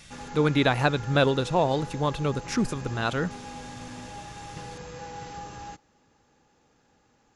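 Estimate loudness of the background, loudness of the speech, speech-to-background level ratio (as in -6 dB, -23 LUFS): -40.5 LUFS, -26.0 LUFS, 14.5 dB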